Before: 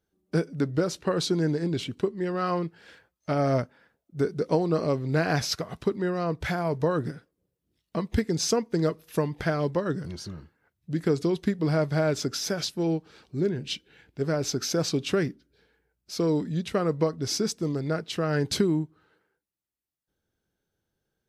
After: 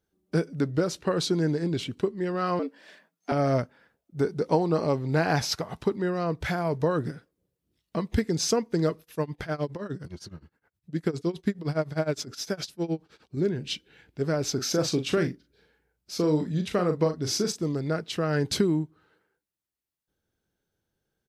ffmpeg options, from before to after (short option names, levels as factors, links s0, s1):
-filter_complex "[0:a]asettb=1/sr,asplit=3[s0][s1][s2];[s0]atrim=end=2.594[s3];[s1]atrim=start=2.59:end=3.32,asetpts=PTS-STARTPTS,afade=t=in:d=0.004:c=qsin,afade=t=out:st=0.726:d=0.004:c=qsin,afreqshift=110[s4];[s2]atrim=start=3.316[s5];[s3][s4]acrossfade=d=0.004:c1=hsin:c2=qsin[s6];[s6][s5]acrossfade=d=0.004:c1=qsin:c2=hsin,asettb=1/sr,asplit=3[s7][s8][s9];[s7]atrim=end=4.174[s10];[s8]atrim=start=4.17:end=5.96,asetpts=PTS-STARTPTS,afade=t=in:d=0.004:c=qsin,afade=t=out:st=1.786:d=0.004:c=qsin,equalizer=f=860:t=o:w=0.27:g=8[s11];[s9]atrim=start=5.956[s12];[s10][s11]acrossfade=d=0.004:c1=hsin:c2=qsin[s13];[s13][s12]acrossfade=d=0.004:c1=qsin:c2=hsin,asettb=1/sr,asplit=3[s14][s15][s16];[s14]atrim=end=9.014[s17];[s15]atrim=start=9.01:end=13.37,asetpts=PTS-STARTPTS,afade=t=in:d=0.004:c=qsin,afade=t=out:st=4.356:d=0.004:c=qsin,tremolo=f=9.7:d=0.91[s18];[s16]atrim=start=13.366[s19];[s17][s18]acrossfade=d=0.004:c1=hsin:c2=qsin[s20];[s20][s19]acrossfade=d=0.004:c1=qsin:c2=hsin,asplit=3[s21][s22][s23];[s21]afade=t=out:st=14.56:d=0.02[s24];[s22]asplit=2[s25][s26];[s26]adelay=39,volume=0.398[s27];[s25][s27]amix=inputs=2:normalize=0,afade=t=in:st=14.56:d=0.02,afade=t=out:st=17.62:d=0.02[s28];[s23]afade=t=in:st=17.62:d=0.02[s29];[s24][s28][s29]amix=inputs=3:normalize=0"